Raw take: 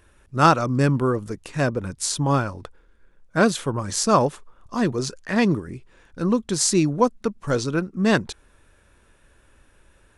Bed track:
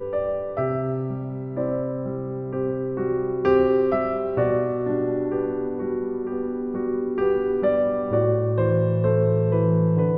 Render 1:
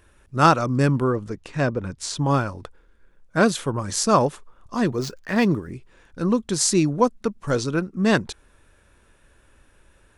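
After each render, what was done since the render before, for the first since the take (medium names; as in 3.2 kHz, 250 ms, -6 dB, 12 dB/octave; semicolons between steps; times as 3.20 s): 1.04–2.19 s: distance through air 68 m; 4.92–5.72 s: median filter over 5 samples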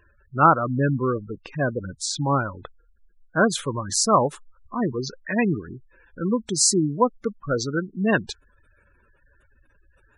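tilt shelf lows -3 dB, about 780 Hz; spectral gate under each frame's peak -15 dB strong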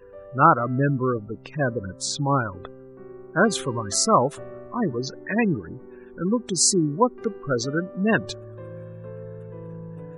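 add bed track -18 dB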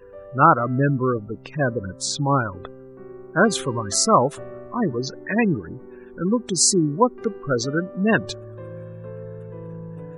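trim +2 dB; peak limiter -2 dBFS, peak gain reduction 1.5 dB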